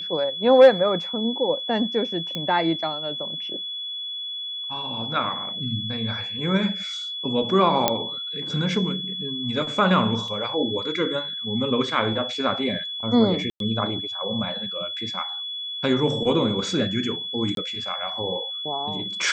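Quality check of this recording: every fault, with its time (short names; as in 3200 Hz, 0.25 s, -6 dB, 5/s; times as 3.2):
tone 3400 Hz -29 dBFS
2.35 pop -15 dBFS
7.88 pop -3 dBFS
10.28 gap 2.6 ms
13.5–13.6 gap 0.102 s
17.55–17.57 gap 22 ms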